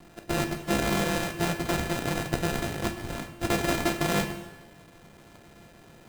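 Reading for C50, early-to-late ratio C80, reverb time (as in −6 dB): 9.0 dB, 10.5 dB, 1.1 s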